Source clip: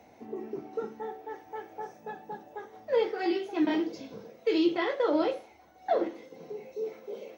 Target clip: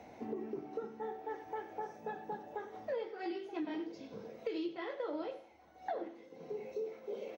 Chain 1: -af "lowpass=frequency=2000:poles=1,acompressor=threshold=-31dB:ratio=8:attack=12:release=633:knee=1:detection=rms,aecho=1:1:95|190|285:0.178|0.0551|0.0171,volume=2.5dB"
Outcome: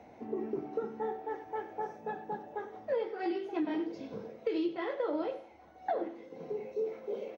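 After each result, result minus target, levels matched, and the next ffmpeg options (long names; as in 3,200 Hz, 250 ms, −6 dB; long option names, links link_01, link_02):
downward compressor: peak gain reduction −6.5 dB; 4,000 Hz band −3.5 dB
-af "lowpass=frequency=2000:poles=1,acompressor=threshold=-38dB:ratio=8:attack=12:release=633:knee=1:detection=rms,aecho=1:1:95|190|285:0.178|0.0551|0.0171,volume=2.5dB"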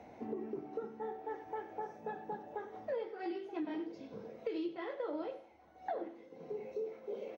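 4,000 Hz band −4.0 dB
-af "lowpass=frequency=4900:poles=1,acompressor=threshold=-38dB:ratio=8:attack=12:release=633:knee=1:detection=rms,aecho=1:1:95|190|285:0.178|0.0551|0.0171,volume=2.5dB"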